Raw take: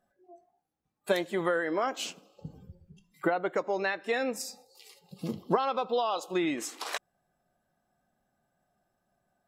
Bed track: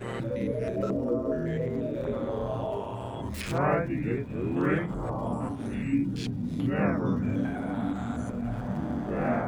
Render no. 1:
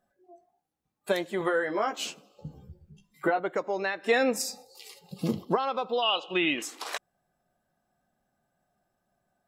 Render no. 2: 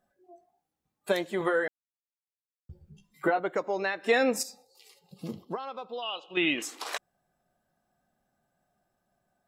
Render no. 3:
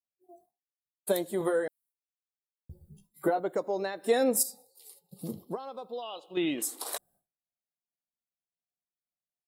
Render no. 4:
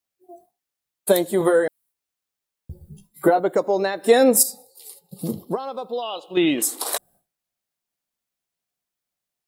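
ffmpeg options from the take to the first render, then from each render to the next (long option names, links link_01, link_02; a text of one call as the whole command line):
ffmpeg -i in.wav -filter_complex "[0:a]asettb=1/sr,asplit=3[link_01][link_02][link_03];[link_01]atrim=end=1.394[link_04];[link_02]atrim=start=1.39:end=3.4,asetpts=PTS-STARTPTS,afade=type=in:duration=0.004:curve=qsin,afade=type=out:start_time=2.006:duration=0.004:curve=qsin,asplit=2[link_05][link_06];[link_06]adelay=14,volume=-4dB[link_07];[link_05][link_07]amix=inputs=2:normalize=0,atrim=end_sample=88641[link_08];[link_03]atrim=start=3.396[link_09];[link_04][link_08]acrossfade=duration=0.004:curve1=hsin:curve2=qsin[link_10];[link_10][link_09]acrossfade=duration=0.004:curve1=qsin:curve2=hsin,asettb=1/sr,asplit=3[link_11][link_12][link_13];[link_11]atrim=end=4.034[link_14];[link_12]atrim=start=4.03:end=5.45,asetpts=PTS-STARTPTS,afade=type=in:duration=0.004:curve=qsin,afade=type=out:start_time=1.416:duration=0.004:curve=qsin,acontrast=53[link_15];[link_13]atrim=start=5.446[link_16];[link_14][link_15]acrossfade=duration=0.004:curve1=hsin:curve2=qsin[link_17];[link_17][link_16]acrossfade=duration=0.004:curve1=qsin:curve2=hsin,asettb=1/sr,asplit=3[link_18][link_19][link_20];[link_18]atrim=end=6.024[link_21];[link_19]atrim=start=6.02:end=6.62,asetpts=PTS-STARTPTS,afade=type=in:duration=0.004:curve=qsin,afade=type=out:start_time=0.596:duration=0.004:curve=qsin,lowpass=frequency=2900:width_type=q:width=9.8[link_22];[link_20]atrim=start=6.616[link_23];[link_21][link_22]acrossfade=duration=0.004:curve1=hsin:curve2=qsin[link_24];[link_24][link_23]acrossfade=duration=0.004:curve1=qsin:curve2=hsin" out.wav
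ffmpeg -i in.wav -filter_complex "[0:a]asplit=5[link_01][link_02][link_03][link_04][link_05];[link_01]atrim=end=1.68,asetpts=PTS-STARTPTS,afade=type=out:start_time=1.676:duration=0.004:curve=hsin[link_06];[link_02]atrim=start=1.68:end=2.69,asetpts=PTS-STARTPTS,volume=0[link_07];[link_03]atrim=start=2.69:end=4.432,asetpts=PTS-STARTPTS,afade=type=in:duration=0.004:curve=hsin[link_08];[link_04]atrim=start=4.428:end=6.372,asetpts=PTS-STARTPTS,volume=-9dB[link_09];[link_05]atrim=start=6.368[link_10];[link_06][link_07][link_08]concat=n=3:v=0:a=1[link_11];[link_11][link_09]acrossfade=duration=0.004:curve1=hsin:curve2=hsin[link_12];[link_12][link_10]acrossfade=duration=0.004:curve1=hsin:curve2=hsin" out.wav
ffmpeg -i in.wav -af "agate=range=-33dB:threshold=-57dB:ratio=3:detection=peak,firequalizer=gain_entry='entry(540,0);entry(1300,-8);entry(2600,-13);entry(3800,-2);entry(6200,-4);entry(9300,13)':delay=0.05:min_phase=1" out.wav
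ffmpeg -i in.wav -af "volume=10.5dB" out.wav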